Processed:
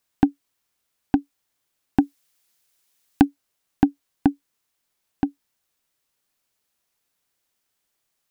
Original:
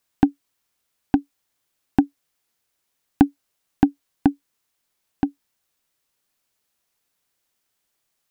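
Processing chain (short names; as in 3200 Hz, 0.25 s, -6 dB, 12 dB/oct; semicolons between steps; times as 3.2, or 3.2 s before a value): 2–3.25 high shelf 2000 Hz +8.5 dB; gain -1 dB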